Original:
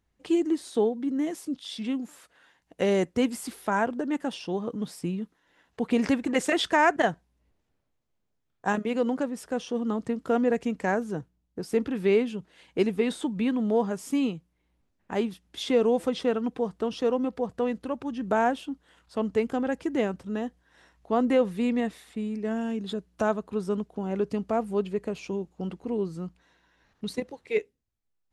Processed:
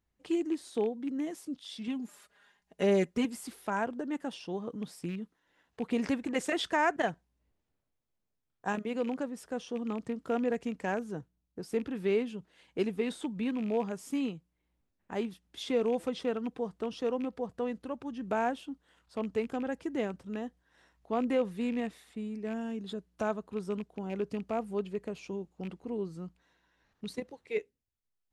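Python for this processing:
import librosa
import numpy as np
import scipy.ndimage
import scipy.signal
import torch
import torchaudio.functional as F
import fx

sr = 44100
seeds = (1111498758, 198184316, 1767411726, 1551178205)

y = fx.rattle_buzz(x, sr, strikes_db=-30.0, level_db=-31.0)
y = fx.comb(y, sr, ms=4.9, depth=0.78, at=(1.87, 3.25))
y = y * librosa.db_to_amplitude(-6.5)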